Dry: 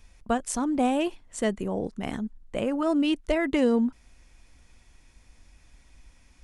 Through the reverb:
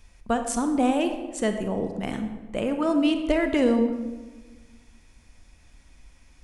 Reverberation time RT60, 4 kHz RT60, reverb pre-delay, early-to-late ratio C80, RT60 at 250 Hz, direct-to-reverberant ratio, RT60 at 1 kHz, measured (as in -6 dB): 1.3 s, 0.80 s, 31 ms, 9.5 dB, 1.7 s, 6.5 dB, 1.2 s